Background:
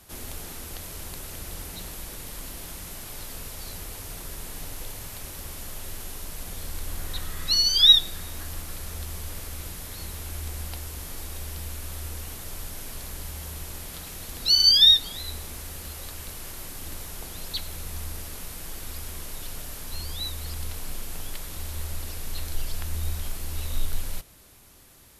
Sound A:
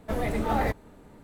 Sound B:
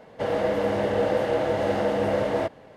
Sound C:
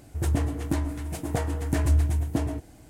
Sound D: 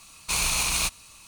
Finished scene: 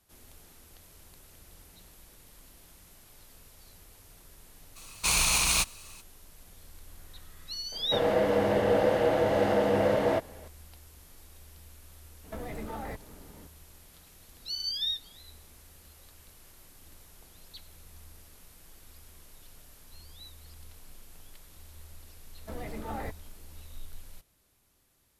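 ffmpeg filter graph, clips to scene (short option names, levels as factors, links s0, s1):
-filter_complex "[1:a]asplit=2[s0][s1];[0:a]volume=0.15[s2];[s0]acompressor=threshold=0.02:ratio=6:attack=3.2:release=140:knee=1:detection=peak[s3];[4:a]atrim=end=1.27,asetpts=PTS-STARTPTS,afade=t=in:d=0.02,afade=t=out:st=1.25:d=0.02,adelay=4750[s4];[2:a]atrim=end=2.76,asetpts=PTS-STARTPTS,volume=0.891,afade=t=in:d=0.004:c=hsin,afade=t=out:st=2.756:d=0.004:c=hsin,adelay=7720[s5];[s3]atrim=end=1.23,asetpts=PTS-STARTPTS,volume=0.891,afade=t=in:d=0.004:c=hsin,afade=t=out:st=1.226:d=0.004:c=hsin,adelay=12240[s6];[s1]atrim=end=1.23,asetpts=PTS-STARTPTS,volume=0.266,afade=t=in:d=0.004:c=hsin,afade=t=out:st=1.226:d=0.004:c=hsin,adelay=22390[s7];[s2][s4][s5][s6][s7]amix=inputs=5:normalize=0"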